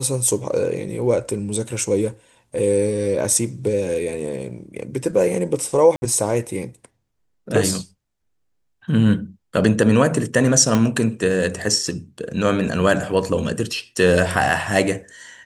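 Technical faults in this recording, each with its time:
0:05.96–0:06.02: drop-out 60 ms
0:10.75: click −6 dBFS

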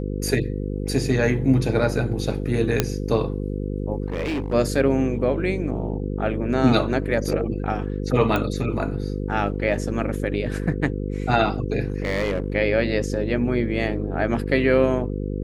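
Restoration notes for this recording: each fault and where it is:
mains buzz 50 Hz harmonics 10 −27 dBFS
0:02.80: click −3 dBFS
0:04.06–0:04.54: clipping −22 dBFS
0:08.36: click −11 dBFS
0:11.88–0:12.52: clipping −18.5 dBFS

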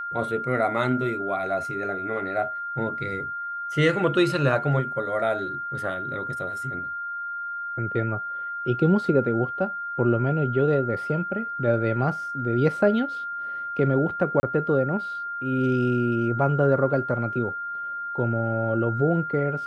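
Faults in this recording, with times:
whistle 1,400 Hz −29 dBFS
0:14.40–0:14.43: drop-out 30 ms

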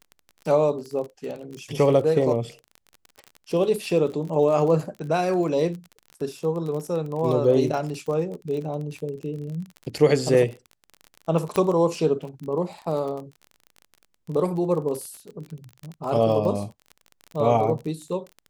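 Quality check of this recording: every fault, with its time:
surface crackle 33 per second −31 dBFS
0:11.56: click −11 dBFS

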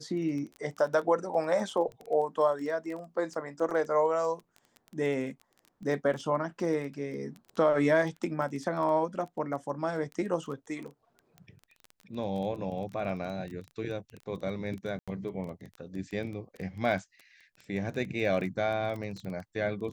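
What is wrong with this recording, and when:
surface crackle 13 per second −36 dBFS
0:14.99–0:15.08: drop-out 86 ms

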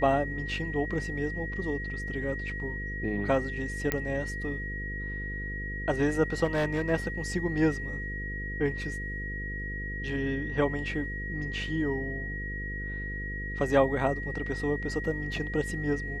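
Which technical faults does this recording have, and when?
mains buzz 50 Hz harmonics 10 −37 dBFS
whistle 1,900 Hz −36 dBFS
0:03.92: click −12 dBFS
0:06.44–0:06.91: clipping −23 dBFS

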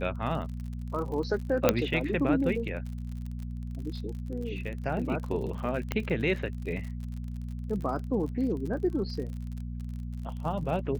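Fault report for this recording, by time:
surface crackle 51 per second −37 dBFS
mains hum 60 Hz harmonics 4 −36 dBFS
0:01.69: click −6 dBFS
0:05.92: click −15 dBFS

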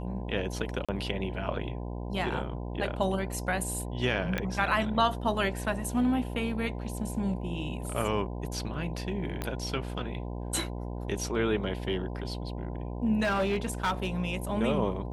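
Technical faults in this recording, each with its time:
mains buzz 60 Hz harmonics 17 −36 dBFS
0:00.85–0:00.89: drop-out 36 ms
0:04.38: click −16 dBFS
0:09.42: click −18 dBFS
0:13.23–0:14.22: clipping −23.5 dBFS

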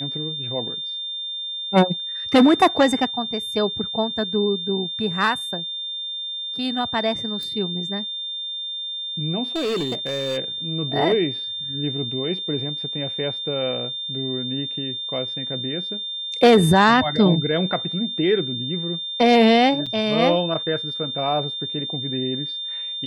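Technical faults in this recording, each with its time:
whistle 3,600 Hz −27 dBFS
0:07.43: click
0:09.55–0:10.38: clipping −20.5 dBFS
0:19.86–0:19.87: drop-out 5.9 ms

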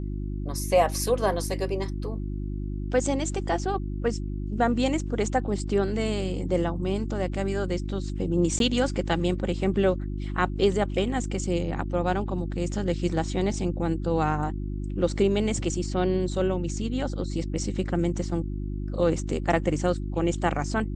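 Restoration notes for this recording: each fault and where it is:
mains hum 50 Hz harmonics 7 −31 dBFS
0:08.59–0:08.60: drop-out 12 ms

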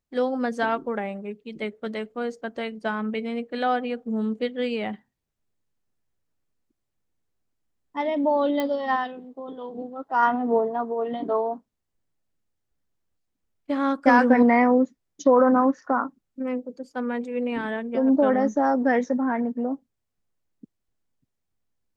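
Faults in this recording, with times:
0:08.60: click −13 dBFS

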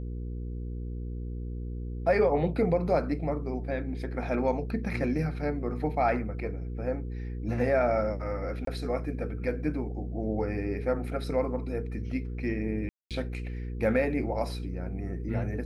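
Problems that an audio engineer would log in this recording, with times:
mains hum 60 Hz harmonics 8 −35 dBFS
0:08.65–0:08.67: drop-out 23 ms
0:12.89–0:13.11: drop-out 217 ms

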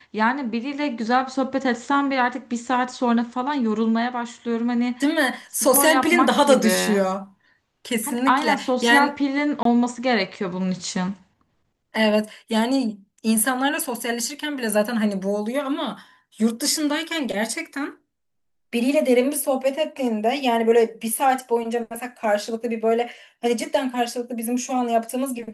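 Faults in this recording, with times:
0:09.63–0:09.65: drop-out 23 ms

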